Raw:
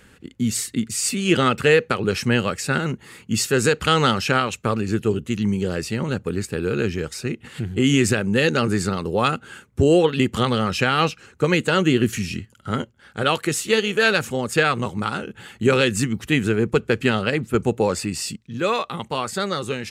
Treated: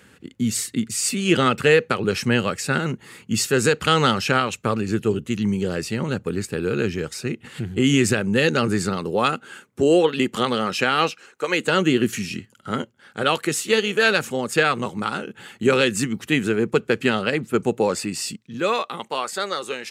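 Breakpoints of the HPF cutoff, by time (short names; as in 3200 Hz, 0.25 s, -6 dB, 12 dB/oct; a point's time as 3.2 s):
8.76 s 96 Hz
9.45 s 220 Hz
10.98 s 220 Hz
11.47 s 600 Hz
11.7 s 160 Hz
18.54 s 160 Hz
19.26 s 410 Hz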